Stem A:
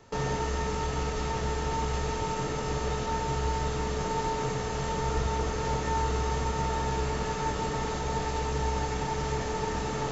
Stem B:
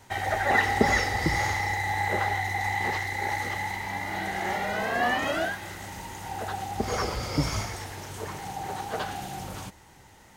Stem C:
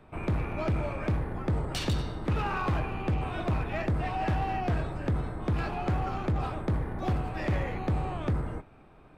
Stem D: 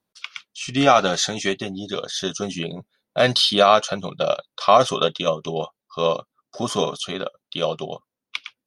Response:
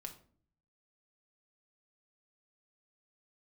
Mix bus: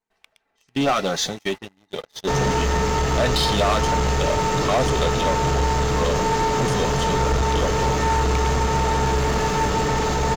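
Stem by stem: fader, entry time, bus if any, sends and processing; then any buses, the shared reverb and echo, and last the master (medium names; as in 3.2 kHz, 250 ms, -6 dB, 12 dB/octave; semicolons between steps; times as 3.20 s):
+0.5 dB, 2.15 s, no send, none
-12.5 dB, 0.00 s, send -13.5 dB, comb filter that takes the minimum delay 4.5 ms; peaking EQ 430 Hz +6 dB 1.5 oct; compression 6:1, threshold -32 dBFS, peak gain reduction 18.5 dB; auto duck -7 dB, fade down 0.50 s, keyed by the fourth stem
-15.5 dB, 0.00 s, no send, Chebyshev high-pass 1.5 kHz, order 2; compressor with a negative ratio -48 dBFS
-11.0 dB, 0.00 s, no send, treble shelf 9 kHz -5.5 dB; LFO notch saw up 4.3 Hz 580–3700 Hz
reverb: on, RT60 0.50 s, pre-delay 5 ms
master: gate -37 dBFS, range -16 dB; waveshaping leveller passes 3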